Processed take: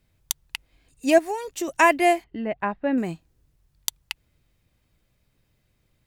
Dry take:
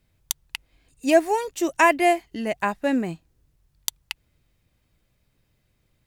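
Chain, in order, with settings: 1.18–1.68 s: compression 6:1, threshold -25 dBFS, peak gain reduction 7.5 dB; 2.24–2.98 s: distance through air 460 m

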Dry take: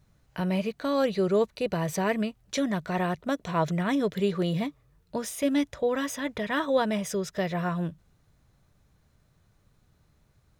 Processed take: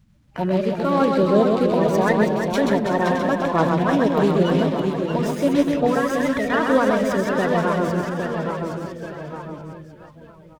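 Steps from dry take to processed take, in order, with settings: coarse spectral quantiser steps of 30 dB; treble shelf 4 kHz -9 dB; on a send: reverse bouncing-ball echo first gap 130 ms, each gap 1.5×, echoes 5; on the sum: ever faster or slower copies 369 ms, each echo -1 st, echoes 2, each echo -6 dB; sliding maximum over 3 samples; trim +6.5 dB

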